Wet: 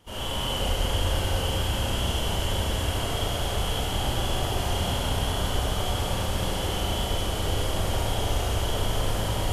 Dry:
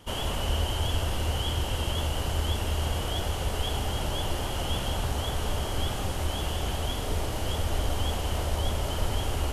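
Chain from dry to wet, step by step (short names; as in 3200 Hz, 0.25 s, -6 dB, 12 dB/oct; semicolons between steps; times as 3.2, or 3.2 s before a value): crackle 200/s -56 dBFS; Schroeder reverb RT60 3.6 s, combs from 33 ms, DRR -10 dB; gain -7 dB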